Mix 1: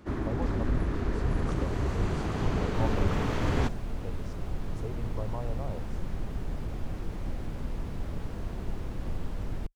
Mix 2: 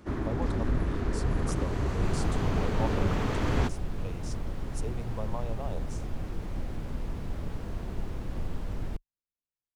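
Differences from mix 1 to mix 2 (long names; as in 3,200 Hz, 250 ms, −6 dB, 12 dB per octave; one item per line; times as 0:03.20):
speech: remove low-pass filter 1,200 Hz 6 dB per octave
second sound: entry −0.70 s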